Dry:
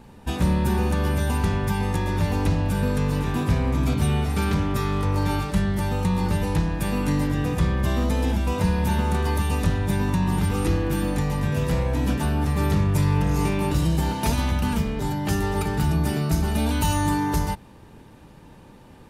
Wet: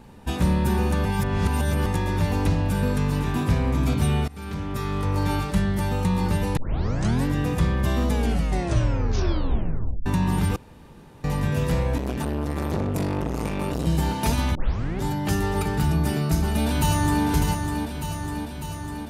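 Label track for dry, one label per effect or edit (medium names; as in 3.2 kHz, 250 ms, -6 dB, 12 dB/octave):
1.050000	1.860000	reverse
2.930000	3.450000	band-stop 500 Hz, Q 13
4.280000	5.520000	fade in equal-power, from -22 dB
6.570000	6.570000	tape start 0.69 s
8.070000	8.070000	tape stop 1.99 s
10.560000	11.240000	room tone
11.980000	13.870000	transformer saturation saturates under 480 Hz
14.550000	14.550000	tape start 0.48 s
16.060000	17.250000	echo throw 600 ms, feedback 70%, level -6 dB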